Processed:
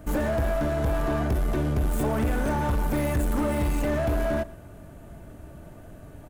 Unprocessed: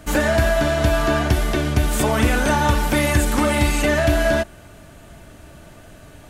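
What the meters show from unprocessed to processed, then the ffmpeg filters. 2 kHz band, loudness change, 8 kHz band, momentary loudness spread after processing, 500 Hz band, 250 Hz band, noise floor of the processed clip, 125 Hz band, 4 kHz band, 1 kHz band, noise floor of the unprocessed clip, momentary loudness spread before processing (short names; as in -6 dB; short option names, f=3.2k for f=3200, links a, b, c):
-13.5 dB, -7.5 dB, -14.0 dB, 20 LU, -7.5 dB, -6.0 dB, -46 dBFS, -6.0 dB, -17.0 dB, -9.0 dB, -44 dBFS, 3 LU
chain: -filter_complex "[0:a]asoftclip=type=tanh:threshold=-19.5dB,aeval=exprs='0.106*(cos(1*acos(clip(val(0)/0.106,-1,1)))-cos(1*PI/2))+0.00668*(cos(4*acos(clip(val(0)/0.106,-1,1)))-cos(4*PI/2))':c=same,equalizer=f=4.3k:w=0.34:g=-14,asplit=2[a][b];[b]aecho=0:1:116:0.0891[c];[a][c]amix=inputs=2:normalize=0"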